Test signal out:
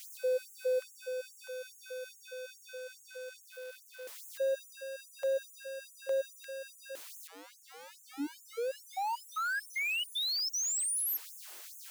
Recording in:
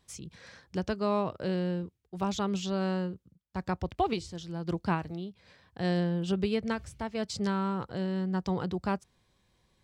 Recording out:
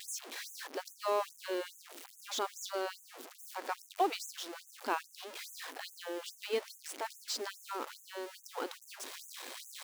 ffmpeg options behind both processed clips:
ffmpeg -i in.wav -af "aeval=exprs='val(0)+0.5*0.0188*sgn(val(0))':channel_layout=same,acrusher=bits=7:mode=log:mix=0:aa=0.000001,afftfilt=real='re*gte(b*sr/1024,230*pow(6300/230,0.5+0.5*sin(2*PI*2.4*pts/sr)))':imag='im*gte(b*sr/1024,230*pow(6300/230,0.5+0.5*sin(2*PI*2.4*pts/sr)))':win_size=1024:overlap=0.75,volume=-2.5dB" out.wav

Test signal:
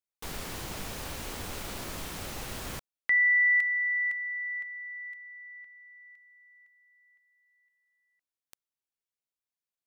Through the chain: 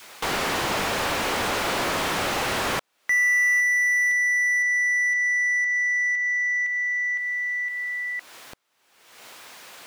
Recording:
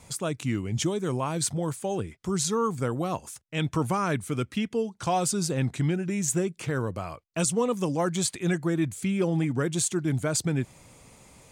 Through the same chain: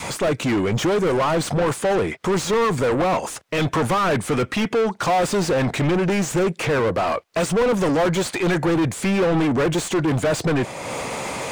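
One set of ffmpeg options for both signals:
ffmpeg -i in.wav -filter_complex "[0:a]acompressor=mode=upward:threshold=-31dB:ratio=2.5:attack=0.1:release=401:knee=2.83:detection=peak,adynamicequalizer=threshold=0.00794:dfrequency=550:dqfactor=1.4:tfrequency=550:tqfactor=1.4:attack=5:release=100:ratio=0.375:range=2.5:mode=boostabove:tftype=bell,asplit=2[link_01][link_02];[link_02]highpass=frequency=720:poles=1,volume=33dB,asoftclip=type=tanh:threshold=-12dB[link_03];[link_01][link_03]amix=inputs=2:normalize=0,lowpass=frequency=1800:poles=1,volume=-6dB" out.wav

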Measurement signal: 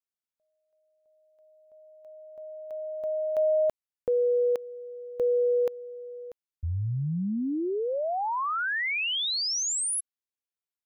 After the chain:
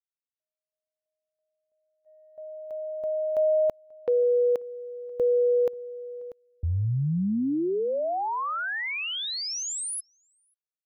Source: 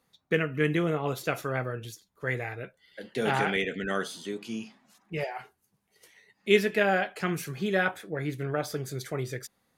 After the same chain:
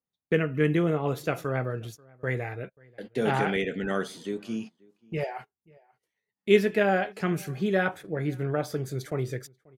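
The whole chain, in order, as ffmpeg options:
ffmpeg -i in.wav -filter_complex "[0:a]agate=range=-24dB:threshold=-47dB:ratio=16:release=103:detection=peak,tiltshelf=frequency=970:gain=3.5,asplit=2[link_01][link_02];[link_02]adelay=536.4,volume=-26dB,highshelf=frequency=4000:gain=-12.1[link_03];[link_01][link_03]amix=inputs=2:normalize=0" out.wav

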